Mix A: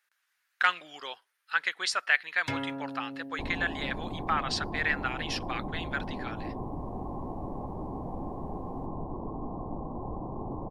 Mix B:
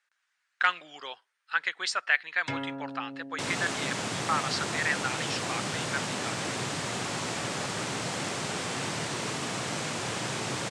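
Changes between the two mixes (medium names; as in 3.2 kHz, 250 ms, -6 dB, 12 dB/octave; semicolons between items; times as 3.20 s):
second sound: remove rippled Chebyshev low-pass 1.1 kHz, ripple 6 dB; master: add elliptic band-pass 120–8300 Hz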